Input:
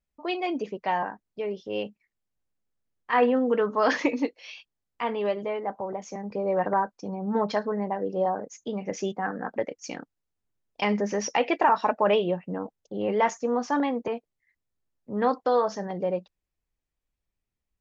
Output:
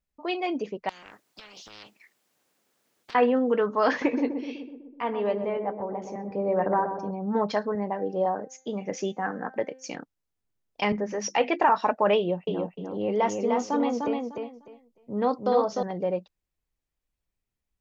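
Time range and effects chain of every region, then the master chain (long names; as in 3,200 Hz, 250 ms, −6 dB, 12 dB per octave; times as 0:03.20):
0:00.89–0:03.15: high-pass filter 300 Hz + downward compressor 16 to 1, threshold −34 dBFS + every bin compressed towards the loudest bin 10 to 1
0:03.89–0:07.11: high-shelf EQ 3,400 Hz −10 dB + feedback echo with a low-pass in the loop 125 ms, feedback 68%, low-pass 850 Hz, level −6 dB
0:07.75–0:09.95: high-pass filter 120 Hz + hum removal 260.5 Hz, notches 28
0:10.92–0:11.60: mains-hum notches 50/100/150/200/250/300/350 Hz + multiband upward and downward expander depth 70%
0:12.17–0:15.83: parametric band 1,600 Hz −6 dB 1.3 octaves + notch filter 1,700 Hz, Q 9.4 + repeating echo 301 ms, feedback 20%, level −4 dB
whole clip: no processing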